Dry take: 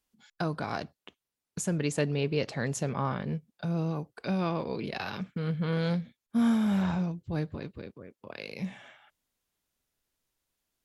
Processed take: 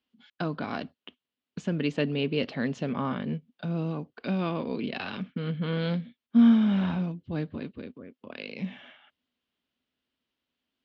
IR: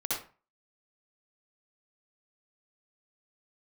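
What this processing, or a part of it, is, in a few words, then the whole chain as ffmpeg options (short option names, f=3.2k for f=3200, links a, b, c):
guitar cabinet: -af "highpass=83,equalizer=f=120:t=q:w=4:g=-7,equalizer=f=250:t=q:w=4:g=10,equalizer=f=840:t=q:w=4:g=-3,equalizer=f=3k:t=q:w=4:g=7,lowpass=f=4.3k:w=0.5412,lowpass=f=4.3k:w=1.3066"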